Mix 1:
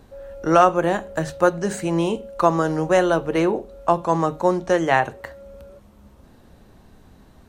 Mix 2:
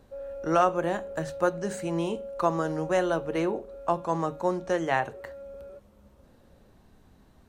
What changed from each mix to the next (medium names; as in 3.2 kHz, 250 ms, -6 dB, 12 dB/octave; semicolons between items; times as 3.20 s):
speech -8.0 dB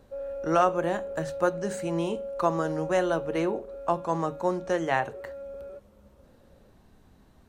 background +3.0 dB